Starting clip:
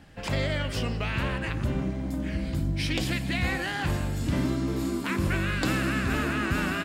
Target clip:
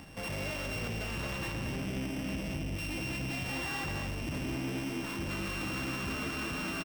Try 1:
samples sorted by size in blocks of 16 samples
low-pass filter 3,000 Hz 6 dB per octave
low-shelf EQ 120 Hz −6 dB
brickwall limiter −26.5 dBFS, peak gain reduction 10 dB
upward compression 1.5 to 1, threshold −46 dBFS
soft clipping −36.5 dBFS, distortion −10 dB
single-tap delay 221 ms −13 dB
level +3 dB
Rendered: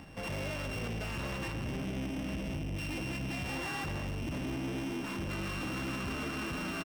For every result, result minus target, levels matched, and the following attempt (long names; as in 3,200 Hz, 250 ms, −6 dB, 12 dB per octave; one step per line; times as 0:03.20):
echo-to-direct −7 dB; 8,000 Hz band −2.0 dB
samples sorted by size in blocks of 16 samples
low-pass filter 3,000 Hz 6 dB per octave
low-shelf EQ 120 Hz −6 dB
brickwall limiter −26.5 dBFS, peak gain reduction 10 dB
upward compression 1.5 to 1, threshold −46 dBFS
soft clipping −36.5 dBFS, distortion −10 dB
single-tap delay 221 ms −6 dB
level +3 dB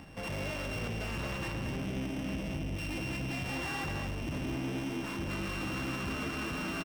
8,000 Hz band −2.5 dB
samples sorted by size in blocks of 16 samples
low-pass filter 8,500 Hz 6 dB per octave
low-shelf EQ 120 Hz −6 dB
brickwall limiter −26.5 dBFS, peak gain reduction 11 dB
upward compression 1.5 to 1, threshold −46 dBFS
soft clipping −36.5 dBFS, distortion −10 dB
single-tap delay 221 ms −6 dB
level +3 dB